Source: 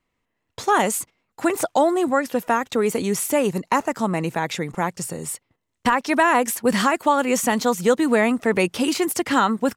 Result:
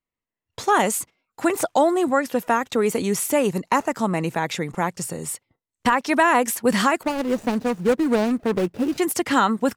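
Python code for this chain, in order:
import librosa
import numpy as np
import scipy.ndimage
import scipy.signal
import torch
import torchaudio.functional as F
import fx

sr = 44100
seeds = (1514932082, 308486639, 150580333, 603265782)

y = fx.median_filter(x, sr, points=41, at=(7.03, 8.98))
y = fx.noise_reduce_blind(y, sr, reduce_db=15)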